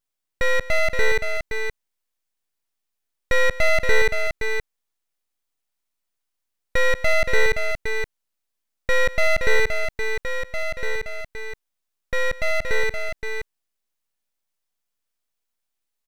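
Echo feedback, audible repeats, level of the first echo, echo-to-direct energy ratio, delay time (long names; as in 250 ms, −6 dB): repeats not evenly spaced, 2, −18.0 dB, −5.5 dB, 195 ms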